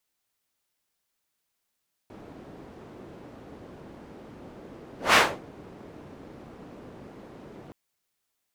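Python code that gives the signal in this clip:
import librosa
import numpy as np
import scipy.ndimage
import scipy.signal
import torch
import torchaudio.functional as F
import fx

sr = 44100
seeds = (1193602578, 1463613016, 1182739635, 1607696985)

y = fx.whoosh(sr, seeds[0], length_s=5.62, peak_s=3.05, rise_s=0.18, fall_s=0.29, ends_hz=320.0, peak_hz=1600.0, q=0.89, swell_db=29.0)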